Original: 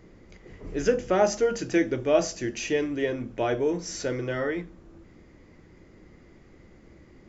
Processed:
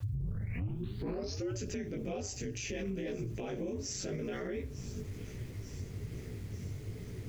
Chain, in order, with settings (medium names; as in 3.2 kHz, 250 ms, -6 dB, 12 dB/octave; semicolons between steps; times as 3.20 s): tape start-up on the opening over 1.52 s; ring modulator 98 Hz; fifteen-band graphic EQ 100 Hz +12 dB, 400 Hz +8 dB, 2.5 kHz +7 dB; chorus voices 2, 1.2 Hz, delay 19 ms, depth 3.1 ms; tone controls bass +11 dB, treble +11 dB; bit crusher 10-bit; feedback echo behind a high-pass 893 ms, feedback 61%, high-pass 2.5 kHz, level -23 dB; compression 2.5:1, threshold -38 dBFS, peak gain reduction 20.5 dB; peak limiter -32 dBFS, peak gain reduction 10 dB; trim +2.5 dB